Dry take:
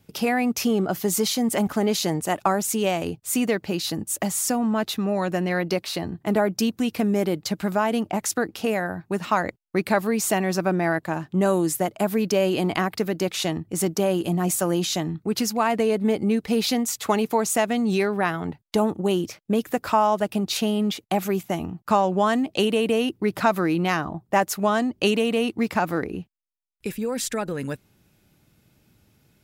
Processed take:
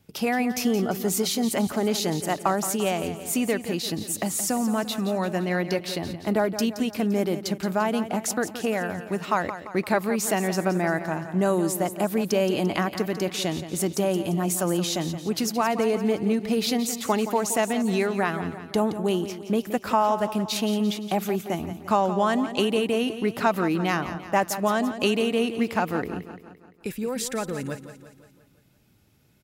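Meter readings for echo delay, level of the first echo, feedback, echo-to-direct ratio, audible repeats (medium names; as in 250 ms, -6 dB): 172 ms, -11.5 dB, 52%, -10.0 dB, 5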